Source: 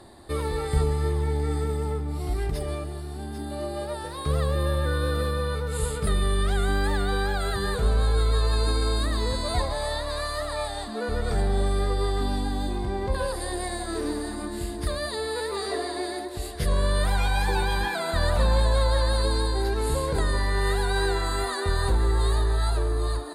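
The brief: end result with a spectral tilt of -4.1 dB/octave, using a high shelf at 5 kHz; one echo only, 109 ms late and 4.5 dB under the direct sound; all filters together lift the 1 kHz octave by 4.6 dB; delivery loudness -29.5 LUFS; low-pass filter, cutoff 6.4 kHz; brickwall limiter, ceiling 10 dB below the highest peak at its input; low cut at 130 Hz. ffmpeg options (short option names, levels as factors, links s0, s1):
-af "highpass=130,lowpass=6400,equalizer=f=1000:t=o:g=6,highshelf=f=5000:g=-7,alimiter=limit=0.0708:level=0:latency=1,aecho=1:1:109:0.596,volume=1.06"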